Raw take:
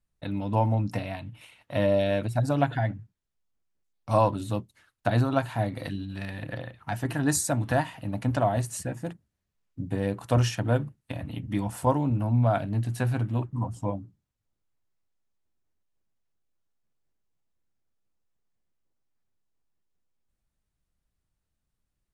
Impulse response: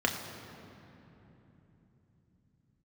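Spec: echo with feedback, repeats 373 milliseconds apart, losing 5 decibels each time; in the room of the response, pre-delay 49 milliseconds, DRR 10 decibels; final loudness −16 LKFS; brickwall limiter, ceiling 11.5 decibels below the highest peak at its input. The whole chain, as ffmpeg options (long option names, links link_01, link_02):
-filter_complex "[0:a]alimiter=limit=-20.5dB:level=0:latency=1,aecho=1:1:373|746|1119|1492|1865|2238|2611:0.562|0.315|0.176|0.0988|0.0553|0.031|0.0173,asplit=2[link_01][link_02];[1:a]atrim=start_sample=2205,adelay=49[link_03];[link_02][link_03]afir=irnorm=-1:irlink=0,volume=-20dB[link_04];[link_01][link_04]amix=inputs=2:normalize=0,volume=14dB"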